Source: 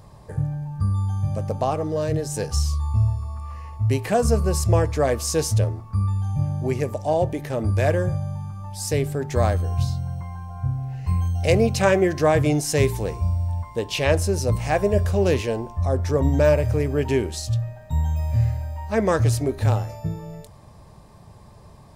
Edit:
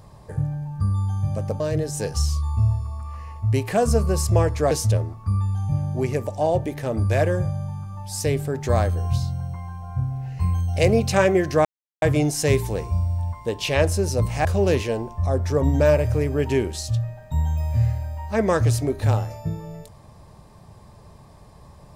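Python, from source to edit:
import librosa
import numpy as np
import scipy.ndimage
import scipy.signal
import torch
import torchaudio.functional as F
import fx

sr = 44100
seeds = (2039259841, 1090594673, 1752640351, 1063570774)

y = fx.edit(x, sr, fx.cut(start_s=1.6, length_s=0.37),
    fx.cut(start_s=5.08, length_s=0.3),
    fx.insert_silence(at_s=12.32, length_s=0.37),
    fx.cut(start_s=14.75, length_s=0.29), tone=tone)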